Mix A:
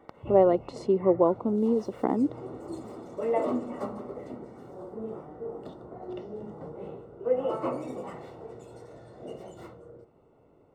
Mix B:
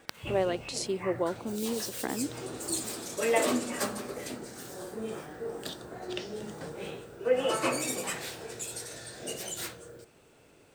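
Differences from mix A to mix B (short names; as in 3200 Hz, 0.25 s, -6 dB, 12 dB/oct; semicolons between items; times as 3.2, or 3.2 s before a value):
speech -8.5 dB; master: remove polynomial smoothing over 65 samples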